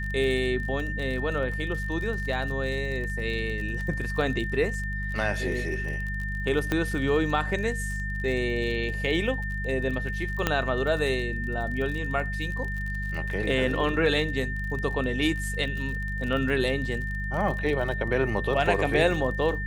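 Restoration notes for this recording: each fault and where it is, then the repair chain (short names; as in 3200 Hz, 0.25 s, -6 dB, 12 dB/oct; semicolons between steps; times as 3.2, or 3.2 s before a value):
crackle 37/s -33 dBFS
hum 50 Hz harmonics 4 -32 dBFS
tone 1800 Hz -33 dBFS
6.72 pop -12 dBFS
10.47 pop -8 dBFS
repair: de-click; notch 1800 Hz, Q 30; de-hum 50 Hz, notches 4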